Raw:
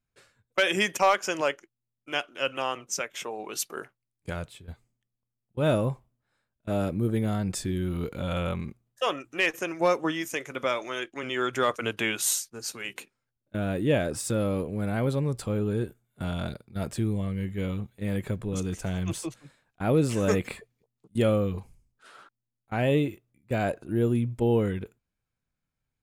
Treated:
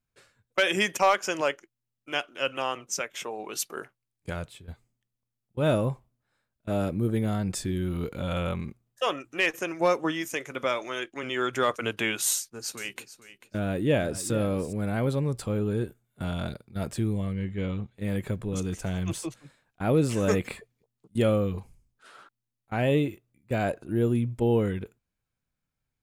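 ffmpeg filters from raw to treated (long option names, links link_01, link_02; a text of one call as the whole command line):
ffmpeg -i in.wav -filter_complex "[0:a]asettb=1/sr,asplit=3[link_01][link_02][link_03];[link_01]atrim=end=12.334[link_04];[link_02]atrim=start=12.33:end=14.73,asetpts=PTS-STARTPTS,afade=type=in:duration=0.004:curve=qsin,afade=type=out:start_time=2.396:duration=0.004:curve=qsin,aecho=1:1:443|886:0.188|0.032,atrim=end_sample=105840[link_05];[link_03]atrim=start=14.726[link_06];[link_04][link_05]acrossfade=duration=0.004:curve1=hsin:curve2=qsin[link_07];[link_07][link_06]acrossfade=duration=0.004:curve1=qsin:curve2=hsin,asettb=1/sr,asplit=3[link_08][link_09][link_10];[link_08]atrim=end=17.334[link_11];[link_09]atrim=start=17.33:end=17.98,asetpts=PTS-STARTPTS,afade=type=in:duration=0.004:curve=qsin,afade=type=out:start_time=0.646:duration=0.004:curve=qsin,lowpass=5300[link_12];[link_10]atrim=start=17.976[link_13];[link_11][link_12]acrossfade=duration=0.004:curve1=hsin:curve2=qsin[link_14];[link_14][link_13]acrossfade=duration=0.004:curve1=qsin:curve2=hsin" out.wav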